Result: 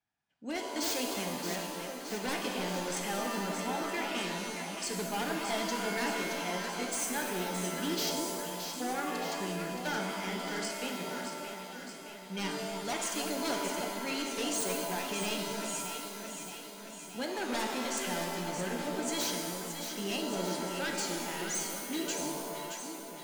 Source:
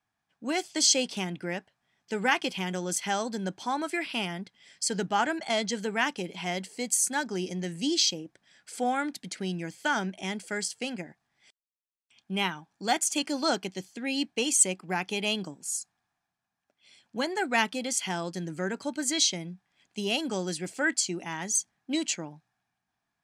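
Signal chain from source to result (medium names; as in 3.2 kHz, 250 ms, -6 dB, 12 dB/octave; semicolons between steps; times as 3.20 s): low-pass 8.8 kHz; band-stop 1.1 kHz, Q 5; wavefolder -23 dBFS; echo whose repeats swap between lows and highs 311 ms, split 1.2 kHz, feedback 79%, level -5 dB; pitch-shifted reverb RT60 1.4 s, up +7 st, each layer -2 dB, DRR 3 dB; trim -7 dB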